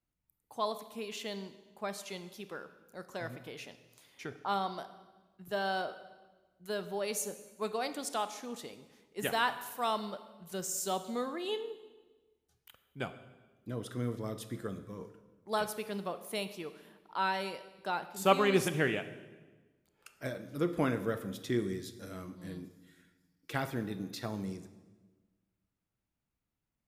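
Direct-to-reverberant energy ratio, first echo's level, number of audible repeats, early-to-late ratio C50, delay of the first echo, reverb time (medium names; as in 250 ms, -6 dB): 11.0 dB, no echo, no echo, 12.5 dB, no echo, 1.3 s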